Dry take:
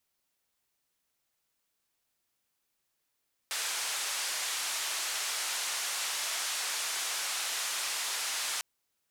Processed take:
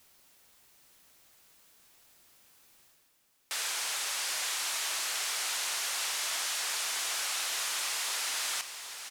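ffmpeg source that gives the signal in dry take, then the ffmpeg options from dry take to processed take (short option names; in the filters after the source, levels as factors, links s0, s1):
-f lavfi -i "anoisesrc=c=white:d=5.1:r=44100:seed=1,highpass=f=820,lowpass=f=8700,volume=-24.8dB"
-af "areverse,acompressor=mode=upward:threshold=0.00501:ratio=2.5,areverse,aecho=1:1:778:0.355"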